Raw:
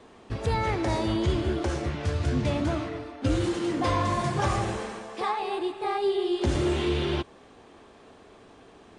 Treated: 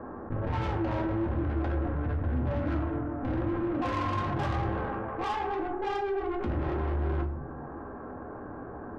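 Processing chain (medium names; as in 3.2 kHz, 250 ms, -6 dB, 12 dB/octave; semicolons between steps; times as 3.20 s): Chebyshev low-pass 1.6 kHz, order 5; valve stage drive 32 dB, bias 0.65; reverberation RT60 0.45 s, pre-delay 4 ms, DRR 1.5 dB; level flattener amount 50%; trim -2 dB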